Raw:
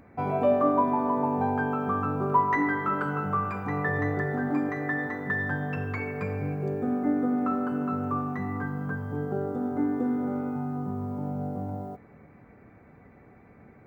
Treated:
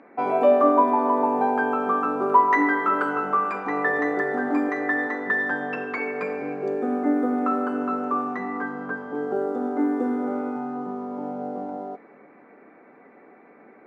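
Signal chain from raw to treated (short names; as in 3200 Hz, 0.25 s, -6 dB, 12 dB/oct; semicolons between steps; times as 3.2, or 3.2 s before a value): HPF 270 Hz 24 dB/oct; low-pass opened by the level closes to 2600 Hz, open at -24.5 dBFS; gain +6 dB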